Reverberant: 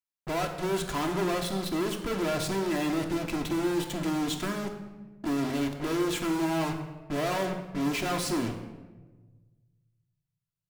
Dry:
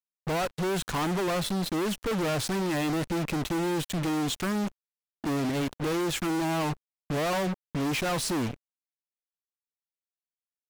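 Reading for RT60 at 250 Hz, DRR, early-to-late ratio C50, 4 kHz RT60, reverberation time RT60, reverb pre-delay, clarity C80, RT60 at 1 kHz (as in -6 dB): 1.7 s, 2.0 dB, 7.5 dB, 0.80 s, 1.3 s, 3 ms, 9.5 dB, 1.1 s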